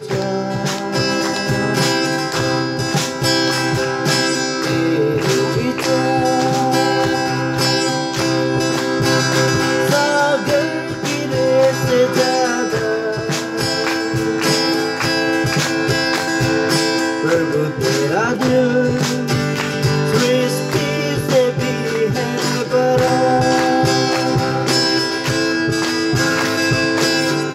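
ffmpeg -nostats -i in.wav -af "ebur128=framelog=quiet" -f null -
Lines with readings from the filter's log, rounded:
Integrated loudness:
  I:         -16.6 LUFS
  Threshold: -26.5 LUFS
Loudness range:
  LRA:         1.5 LU
  Threshold: -36.5 LUFS
  LRA low:   -17.2 LUFS
  LRA high:  -15.7 LUFS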